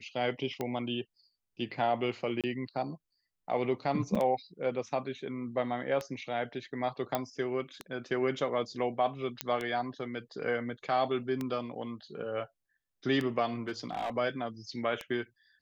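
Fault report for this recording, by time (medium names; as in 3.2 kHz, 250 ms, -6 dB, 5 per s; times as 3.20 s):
tick 33 1/3 rpm -20 dBFS
2.41–2.44 s: dropout 27 ms
4.15–4.16 s: dropout 5.6 ms
7.15 s: pop -15 dBFS
9.41 s: pop -13 dBFS
13.68–14.10 s: clipped -29.5 dBFS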